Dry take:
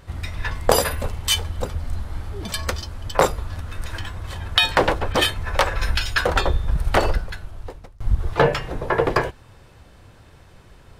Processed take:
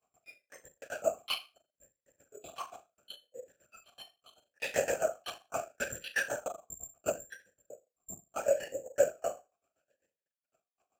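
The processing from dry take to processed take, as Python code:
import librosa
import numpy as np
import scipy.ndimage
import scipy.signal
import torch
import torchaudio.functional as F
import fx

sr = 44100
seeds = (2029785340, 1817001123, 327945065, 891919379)

p1 = fx.noise_reduce_blind(x, sr, reduce_db=23)
p2 = fx.rider(p1, sr, range_db=3, speed_s=0.5)
p3 = p1 + (p2 * librosa.db_to_amplitude(-2.5))
p4 = fx.granulator(p3, sr, seeds[0], grain_ms=82.0, per_s=7.8, spray_ms=16.0, spread_st=0)
p5 = fx.step_gate(p4, sr, bpm=181, pattern='xx.x..xx..xxxxx', floor_db=-60.0, edge_ms=4.5)
p6 = 10.0 ** (-17.0 / 20.0) * np.tanh(p5 / 10.0 ** (-17.0 / 20.0))
p7 = p6 + fx.room_flutter(p6, sr, wall_m=6.4, rt60_s=0.27, dry=0)
p8 = fx.lpc_vocoder(p7, sr, seeds[1], excitation='whisper', order=8)
p9 = (np.kron(scipy.signal.resample_poly(p8, 1, 6), np.eye(6)[0]) * 6)[:len(p8)]
p10 = fx.vowel_sweep(p9, sr, vowels='a-e', hz=0.74)
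y = p10 * librosa.db_to_amplitude(5.5)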